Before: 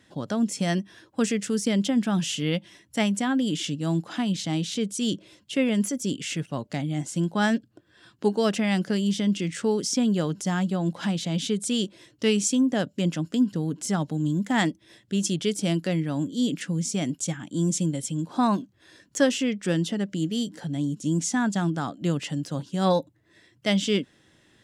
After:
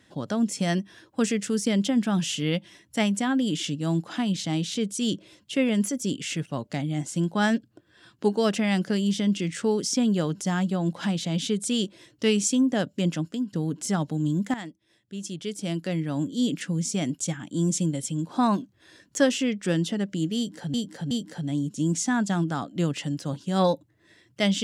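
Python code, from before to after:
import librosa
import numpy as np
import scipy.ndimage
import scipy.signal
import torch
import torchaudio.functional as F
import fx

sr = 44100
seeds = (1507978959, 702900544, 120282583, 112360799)

y = fx.edit(x, sr, fx.fade_out_to(start_s=13.21, length_s=0.32, curve='qua', floor_db=-9.0),
    fx.fade_in_from(start_s=14.54, length_s=1.66, curve='qua', floor_db=-14.5),
    fx.repeat(start_s=20.37, length_s=0.37, count=3), tone=tone)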